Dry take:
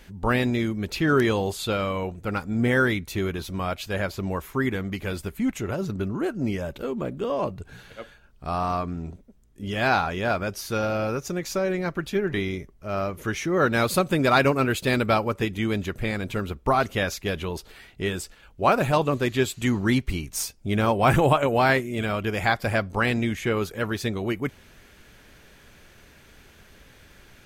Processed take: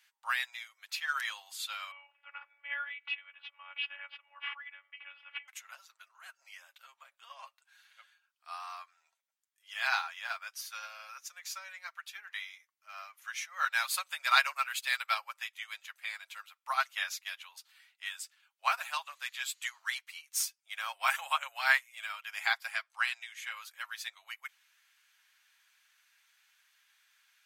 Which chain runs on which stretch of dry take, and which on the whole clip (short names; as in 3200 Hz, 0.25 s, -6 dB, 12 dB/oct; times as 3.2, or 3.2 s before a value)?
1.91–5.48 elliptic low-pass 2900 Hz, stop band 60 dB + robotiser 284 Hz + backwards sustainer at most 22 dB/s
22.71–23.39 LPF 12000 Hz + bell 160 Hz -13.5 dB 2.7 oct
whole clip: Bessel high-pass 1600 Hz, order 8; comb 7.4 ms, depth 45%; upward expander 1.5:1, over -46 dBFS